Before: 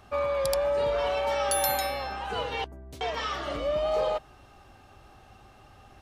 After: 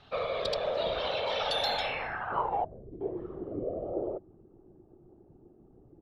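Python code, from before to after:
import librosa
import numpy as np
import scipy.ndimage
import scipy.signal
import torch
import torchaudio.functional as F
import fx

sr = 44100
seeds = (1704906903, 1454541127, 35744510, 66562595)

y = fx.whisperise(x, sr, seeds[0])
y = fx.filter_sweep_lowpass(y, sr, from_hz=3800.0, to_hz=360.0, start_s=1.75, end_s=2.96, q=5.0)
y = F.gain(torch.from_numpy(y), -5.5).numpy()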